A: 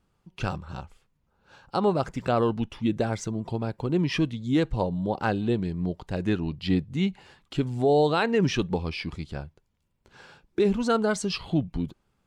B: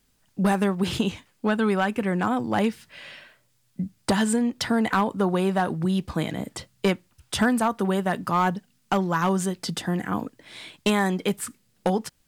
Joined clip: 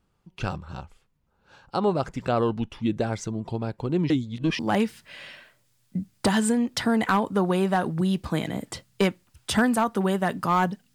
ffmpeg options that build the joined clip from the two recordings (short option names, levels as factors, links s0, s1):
-filter_complex "[0:a]apad=whole_dur=10.94,atrim=end=10.94,asplit=2[s0][s1];[s0]atrim=end=4.102[s2];[s1]atrim=start=4.098:end=4.592,asetpts=PTS-STARTPTS,areverse[s3];[1:a]atrim=start=2.428:end=8.78[s4];[s2][s3]acrossfade=d=0.004:c1=hsin:c2=hsin[s5];[s5][s4]acrossfade=d=0.004:c1=hsin:c2=hsin"